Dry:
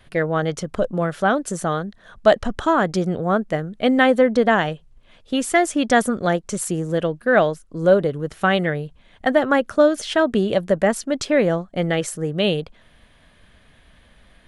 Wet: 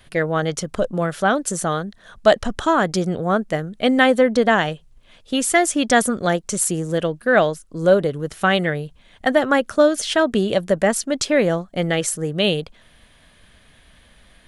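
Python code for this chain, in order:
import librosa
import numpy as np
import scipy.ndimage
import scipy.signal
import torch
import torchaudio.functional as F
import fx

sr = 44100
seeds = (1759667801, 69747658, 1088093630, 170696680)

y = fx.high_shelf(x, sr, hz=3600.0, db=8.0)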